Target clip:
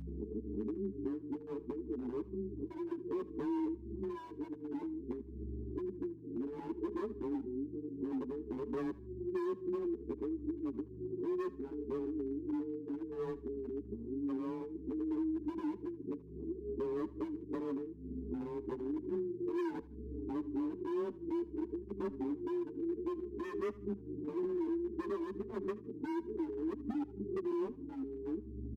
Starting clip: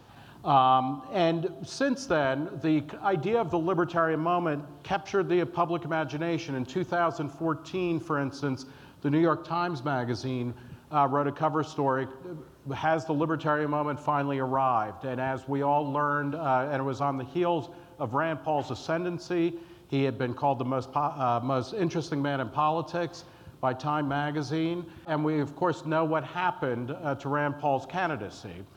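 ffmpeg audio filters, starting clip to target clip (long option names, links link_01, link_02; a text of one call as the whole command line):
ffmpeg -i in.wav -filter_complex "[0:a]areverse,afftfilt=real='re*between(b*sr/4096,180,440)':imag='im*between(b*sr/4096,180,440)':win_size=4096:overlap=0.75,aeval=exprs='val(0)+0.002*(sin(2*PI*50*n/s)+sin(2*PI*2*50*n/s)/2+sin(2*PI*3*50*n/s)/3+sin(2*PI*4*50*n/s)/4+sin(2*PI*5*50*n/s)/5)':channel_layout=same,acompressor=mode=upward:threshold=-41dB:ratio=2.5,asoftclip=type=hard:threshold=-31dB,afreqshift=17,acompressor=threshold=-44dB:ratio=4,asplit=2[link_01][link_02];[link_02]aecho=0:1:78|156:0.1|0.031[link_03];[link_01][link_03]amix=inputs=2:normalize=0,asplit=2[link_04][link_05];[link_05]adelay=8.8,afreqshift=-0.61[link_06];[link_04][link_06]amix=inputs=2:normalize=1,volume=9.5dB" out.wav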